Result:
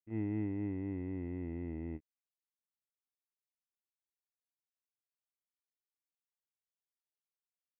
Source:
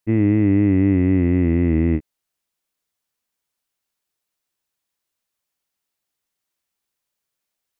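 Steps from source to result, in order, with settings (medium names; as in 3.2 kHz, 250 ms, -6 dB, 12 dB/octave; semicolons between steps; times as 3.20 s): peak limiter -14 dBFS, peak gain reduction 6.5 dB; gate -18 dBFS, range -28 dB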